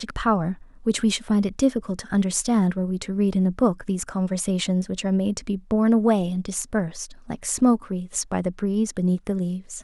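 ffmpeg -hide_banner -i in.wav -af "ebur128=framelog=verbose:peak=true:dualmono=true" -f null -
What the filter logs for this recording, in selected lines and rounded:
Integrated loudness:
  I:         -20.6 LUFS
  Threshold: -30.7 LUFS
Loudness range:
  LRA:         2.0 LU
  Threshold: -40.5 LUFS
  LRA low:   -21.8 LUFS
  LRA high:  -19.8 LUFS
True peak:
  Peak:       -7.2 dBFS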